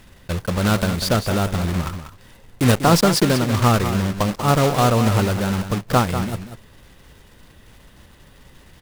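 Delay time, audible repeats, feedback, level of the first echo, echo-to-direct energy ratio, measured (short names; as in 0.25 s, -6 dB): 0.192 s, 1, no steady repeat, -10.0 dB, -10.0 dB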